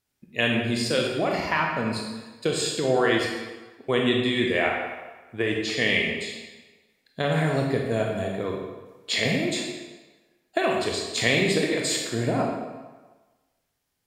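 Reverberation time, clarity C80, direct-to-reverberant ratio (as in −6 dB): 1.3 s, 4.0 dB, −0.5 dB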